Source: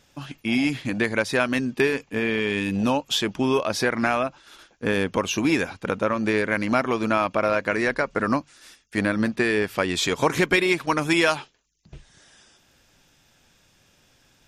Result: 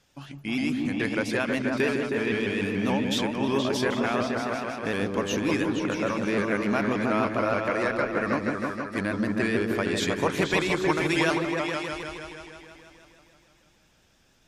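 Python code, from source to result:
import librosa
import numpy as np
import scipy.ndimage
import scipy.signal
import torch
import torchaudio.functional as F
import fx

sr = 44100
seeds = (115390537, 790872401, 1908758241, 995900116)

y = fx.echo_opening(x, sr, ms=158, hz=400, octaves=2, feedback_pct=70, wet_db=0)
y = fx.vibrato_shape(y, sr, shape='saw_up', rate_hz=6.9, depth_cents=100.0)
y = y * librosa.db_to_amplitude(-6.0)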